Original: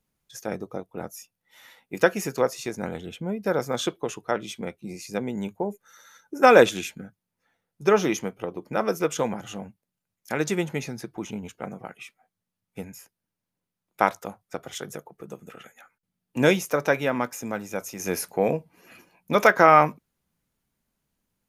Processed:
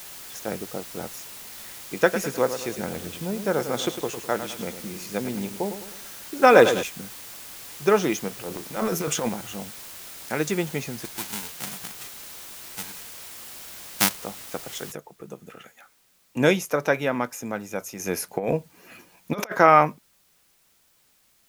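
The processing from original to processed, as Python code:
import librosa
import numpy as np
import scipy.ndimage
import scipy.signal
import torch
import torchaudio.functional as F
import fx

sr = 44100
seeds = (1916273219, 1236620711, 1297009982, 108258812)

y = fx.echo_feedback(x, sr, ms=103, feedback_pct=44, wet_db=-10.0, at=(1.99, 6.83))
y = fx.transient(y, sr, attack_db=-10, sustain_db=9, at=(8.28, 9.29))
y = fx.envelope_flatten(y, sr, power=0.1, at=(11.04, 14.23), fade=0.02)
y = fx.noise_floor_step(y, sr, seeds[0], at_s=14.92, before_db=-41, after_db=-63, tilt_db=0.0)
y = fx.over_compress(y, sr, threshold_db=-24.0, ratio=-0.5, at=(18.3, 19.58), fade=0.02)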